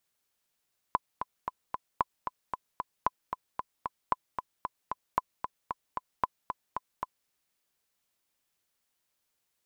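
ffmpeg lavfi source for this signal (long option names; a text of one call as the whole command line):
ffmpeg -f lavfi -i "aevalsrc='pow(10,(-11.5-7.5*gte(mod(t,4*60/227),60/227))/20)*sin(2*PI*1010*mod(t,60/227))*exp(-6.91*mod(t,60/227)/0.03)':duration=6.34:sample_rate=44100" out.wav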